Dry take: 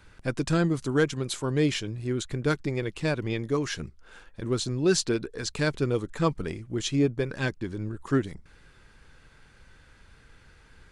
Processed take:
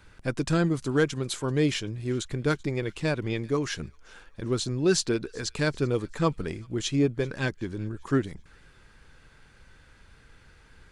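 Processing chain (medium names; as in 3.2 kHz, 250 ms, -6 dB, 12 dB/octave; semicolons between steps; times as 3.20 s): feedback echo behind a high-pass 386 ms, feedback 46%, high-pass 1.7 kHz, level -23.5 dB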